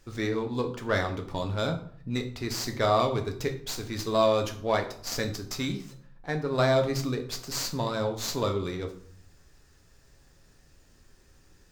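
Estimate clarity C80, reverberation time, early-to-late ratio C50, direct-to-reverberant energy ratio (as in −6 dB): 15.0 dB, 0.55 s, 11.0 dB, 3.5 dB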